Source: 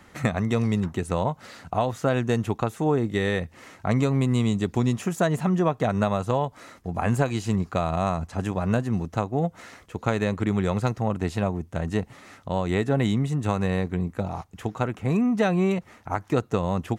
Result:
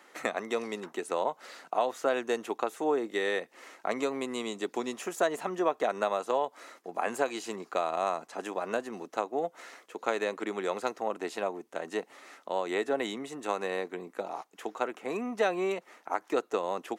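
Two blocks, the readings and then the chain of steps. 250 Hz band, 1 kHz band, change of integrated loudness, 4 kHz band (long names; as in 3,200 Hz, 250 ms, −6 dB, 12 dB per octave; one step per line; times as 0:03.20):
−13.0 dB, −3.0 dB, −7.0 dB, −3.0 dB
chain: high-pass filter 330 Hz 24 dB per octave
level −3 dB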